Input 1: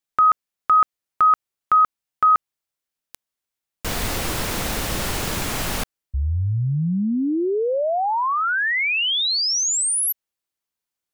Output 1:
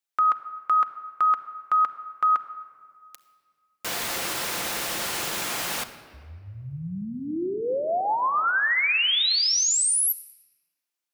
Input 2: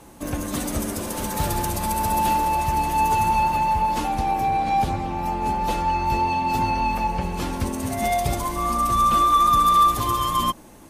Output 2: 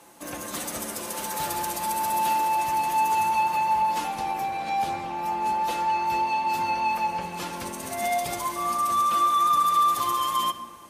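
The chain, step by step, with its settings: HPF 690 Hz 6 dB/oct; in parallel at 0 dB: limiter -18 dBFS; on the sum: shoebox room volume 3900 m³, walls mixed, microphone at 0.82 m; gain -7.5 dB

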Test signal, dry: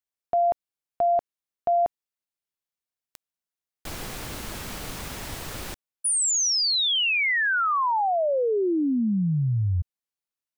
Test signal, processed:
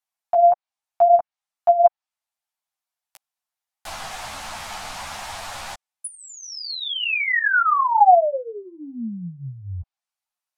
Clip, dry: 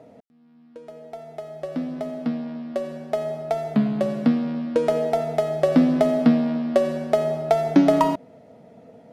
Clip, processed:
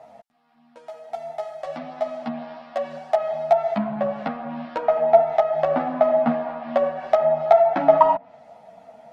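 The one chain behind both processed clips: treble ducked by the level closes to 1600 Hz, closed at -19.5 dBFS; resonant low shelf 550 Hz -10 dB, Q 3; ensemble effect; gain +6.5 dB

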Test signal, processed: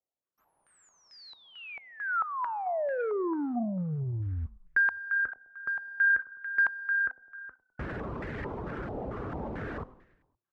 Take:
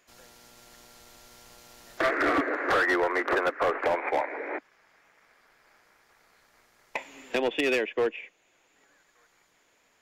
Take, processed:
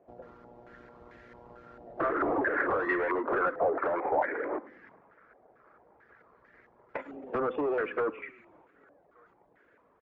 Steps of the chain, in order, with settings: HPF 41 Hz 24 dB/oct; de-hum 255.2 Hz, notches 34; reverb removal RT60 0.52 s; resonant low shelf 640 Hz +7.5 dB, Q 1.5; transient shaper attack +4 dB, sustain +8 dB; in parallel at -3 dB: compressor, threshold -34 dBFS; on the sum: modulation noise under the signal 32 dB; soft clip -21 dBFS; on a send: frequency-shifting echo 0.103 s, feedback 57%, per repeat -32 Hz, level -19 dB; on the sum: stepped low-pass 4.5 Hz 750–1800 Hz; gain -7.5 dB

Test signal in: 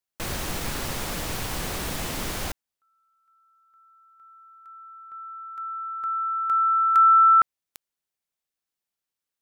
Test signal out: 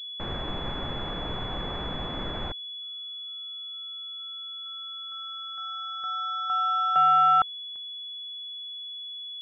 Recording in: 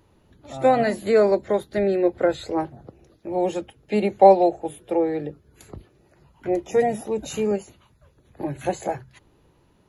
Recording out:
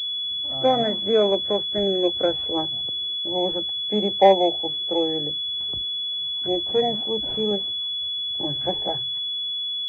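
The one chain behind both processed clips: pulse-width modulation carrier 3400 Hz; gain -2 dB

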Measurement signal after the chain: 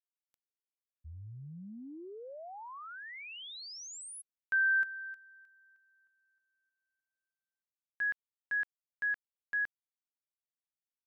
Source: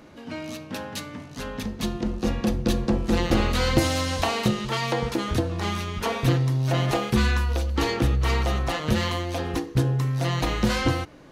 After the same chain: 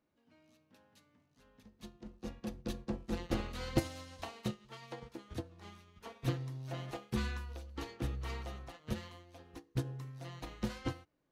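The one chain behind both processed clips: upward expander 2.5:1, over -31 dBFS; gain -9 dB

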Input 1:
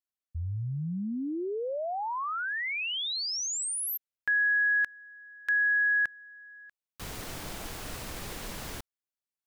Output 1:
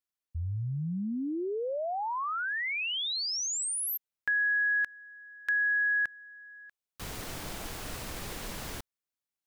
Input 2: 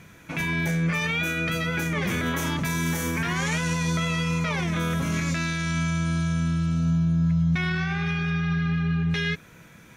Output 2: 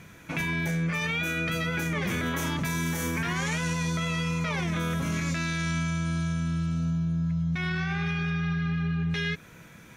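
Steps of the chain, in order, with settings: compressor, threshold -25 dBFS

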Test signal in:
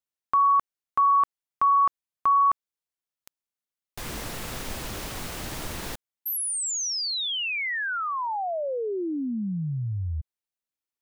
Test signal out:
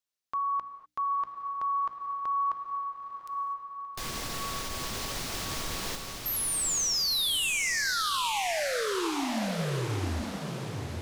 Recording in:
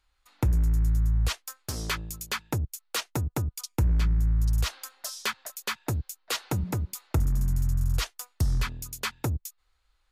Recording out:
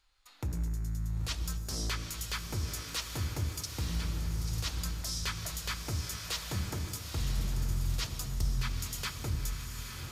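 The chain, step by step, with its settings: bell 4900 Hz +6 dB 1.5 oct; notches 60/120/180/240/300 Hz; in parallel at +1 dB: compressor, threshold -33 dBFS; on the sum: limiter -18 dBFS; diffused feedback echo 0.918 s, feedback 51%, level -5 dB; non-linear reverb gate 0.27 s flat, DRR 10 dB; gain -7.5 dB

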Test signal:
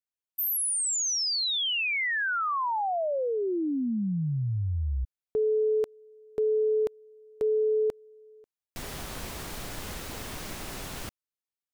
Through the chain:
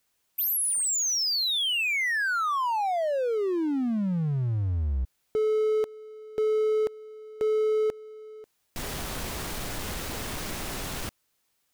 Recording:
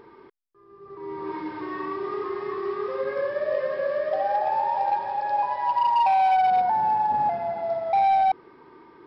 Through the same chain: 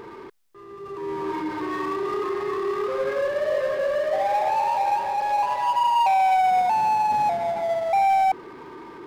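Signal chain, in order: power-law curve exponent 0.7

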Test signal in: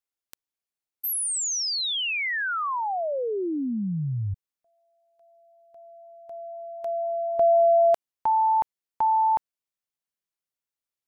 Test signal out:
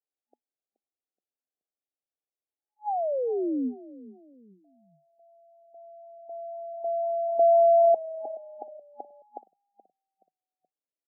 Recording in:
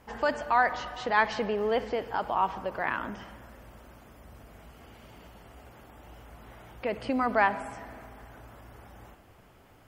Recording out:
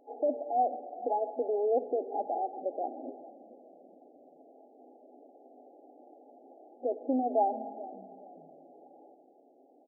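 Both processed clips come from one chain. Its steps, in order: FFT band-pass 240–840 Hz; frequency-shifting echo 0.425 s, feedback 36%, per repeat -31 Hz, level -18 dB

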